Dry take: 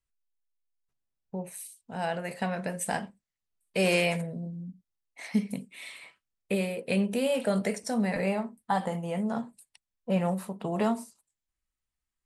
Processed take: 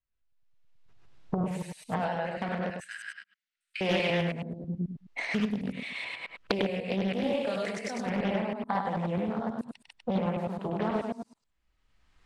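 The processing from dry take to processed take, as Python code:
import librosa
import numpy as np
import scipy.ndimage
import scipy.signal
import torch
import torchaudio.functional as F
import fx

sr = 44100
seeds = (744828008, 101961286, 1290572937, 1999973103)

y = fx.reverse_delay(x, sr, ms=108, wet_db=-0.5)
y = fx.recorder_agc(y, sr, target_db=-18.5, rise_db_per_s=25.0, max_gain_db=30)
y = fx.comb(y, sr, ms=6.5, depth=0.7, at=(1.37, 1.99))
y = fx.ellip_highpass(y, sr, hz=1400.0, order=4, stop_db=40, at=(2.7, 3.81))
y = fx.tilt_eq(y, sr, slope=3.0, at=(7.46, 8.06))
y = scipy.signal.sosfilt(scipy.signal.butter(2, 3700.0, 'lowpass', fs=sr, output='sos'), y)
y = y + 10.0 ** (-5.0 / 20.0) * np.pad(y, (int(100 * sr / 1000.0), 0))[:len(y)]
y = fx.doppler_dist(y, sr, depth_ms=0.6)
y = y * 10.0 ** (-5.0 / 20.0)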